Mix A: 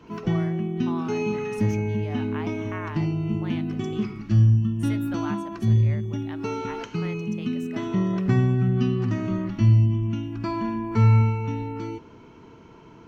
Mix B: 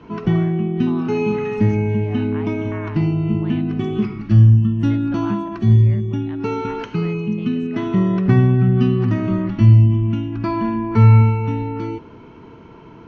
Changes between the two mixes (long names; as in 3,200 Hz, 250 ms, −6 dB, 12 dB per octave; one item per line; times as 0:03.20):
background +7.0 dB
master: add high-frequency loss of the air 160 metres